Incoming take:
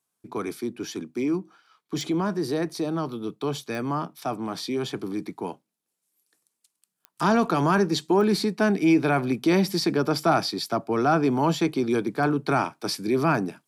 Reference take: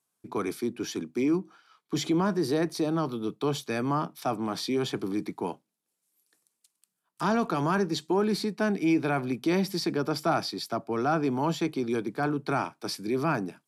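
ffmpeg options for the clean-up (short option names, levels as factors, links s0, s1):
-af "adeclick=t=4,asetnsamples=n=441:p=0,asendcmd='7 volume volume -5dB',volume=1"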